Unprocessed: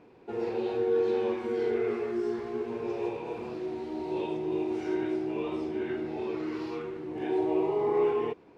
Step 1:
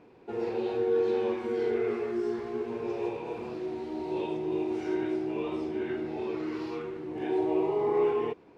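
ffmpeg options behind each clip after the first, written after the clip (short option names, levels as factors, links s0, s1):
-af anull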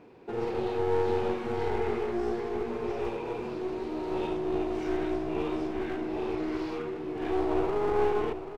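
-filter_complex "[0:a]aeval=exprs='clip(val(0),-1,0.0168)':c=same,asplit=2[s0][s1];[s1]aecho=0:1:785:0.282[s2];[s0][s2]amix=inputs=2:normalize=0,volume=1.33"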